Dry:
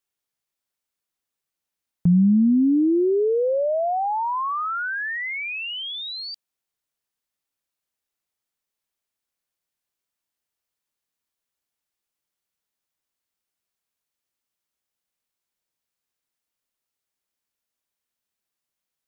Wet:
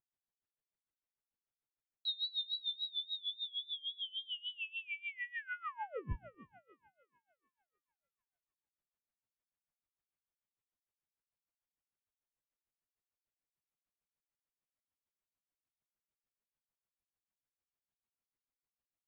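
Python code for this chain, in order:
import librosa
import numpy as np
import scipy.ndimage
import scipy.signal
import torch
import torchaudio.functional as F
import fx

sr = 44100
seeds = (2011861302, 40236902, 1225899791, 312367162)

y = fx.freq_invert(x, sr, carrier_hz=4000)
y = fx.low_shelf(y, sr, hz=220.0, db=6.5)
y = fx.hum_notches(y, sr, base_hz=60, count=9)
y = fx.echo_thinned(y, sr, ms=352, feedback_pct=44, hz=330.0, wet_db=-13)
y = fx.vibrato(y, sr, rate_hz=3.6, depth_cents=75.0)
y = fx.air_absorb(y, sr, metres=470.0)
y = y * 10.0 ** (-23 * (0.5 - 0.5 * np.cos(2.0 * np.pi * 6.7 * np.arange(len(y)) / sr)) / 20.0)
y = F.gain(torch.from_numpy(y), -5.0).numpy()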